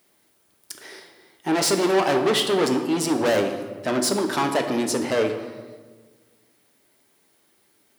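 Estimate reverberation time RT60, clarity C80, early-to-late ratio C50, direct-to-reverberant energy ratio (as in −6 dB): 1.4 s, 9.0 dB, 7.5 dB, 4.5 dB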